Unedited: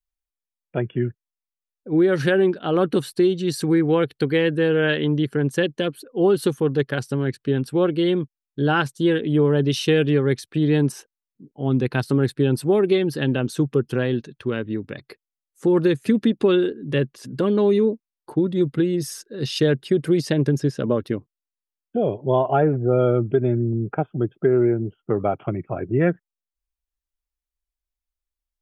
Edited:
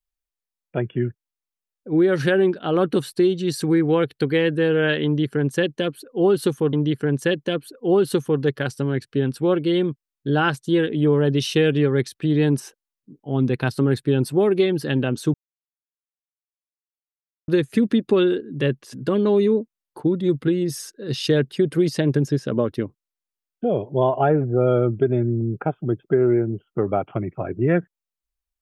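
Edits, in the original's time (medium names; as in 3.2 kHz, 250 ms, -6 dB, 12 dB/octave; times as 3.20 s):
5.05–6.73 s: loop, 2 plays
13.66–15.80 s: mute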